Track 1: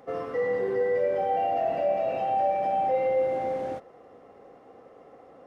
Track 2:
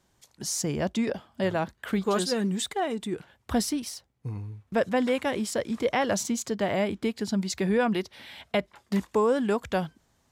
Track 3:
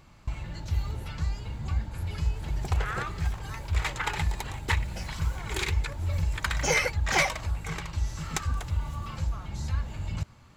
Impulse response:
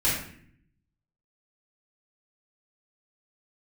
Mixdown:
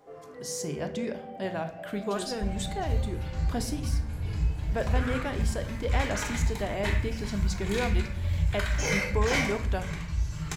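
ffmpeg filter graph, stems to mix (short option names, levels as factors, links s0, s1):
-filter_complex "[0:a]acompressor=threshold=0.00631:ratio=2,flanger=delay=20:depth=4.8:speed=0.95,volume=0.501,asplit=2[s0][s1];[s1]volume=0.299[s2];[1:a]volume=0.447,asplit=2[s3][s4];[s4]volume=0.119[s5];[2:a]bandreject=f=820:w=15,adelay=2150,volume=0.335,asplit=2[s6][s7];[s7]volume=0.398[s8];[3:a]atrim=start_sample=2205[s9];[s2][s5][s8]amix=inputs=3:normalize=0[s10];[s10][s9]afir=irnorm=-1:irlink=0[s11];[s0][s3][s6][s11]amix=inputs=4:normalize=0"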